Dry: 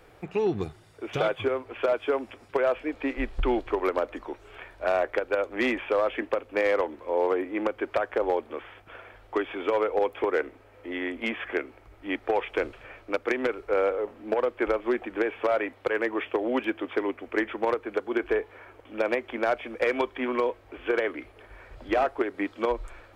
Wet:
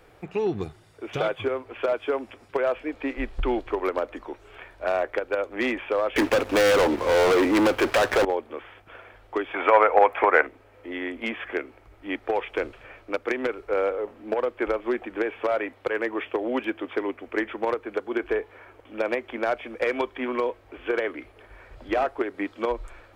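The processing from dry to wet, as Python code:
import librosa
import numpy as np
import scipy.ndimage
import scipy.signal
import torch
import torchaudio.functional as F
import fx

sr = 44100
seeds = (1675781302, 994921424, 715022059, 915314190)

y = fx.leveller(x, sr, passes=5, at=(6.16, 8.25))
y = fx.band_shelf(y, sr, hz=1200.0, db=12.5, octaves=2.4, at=(9.54, 10.47))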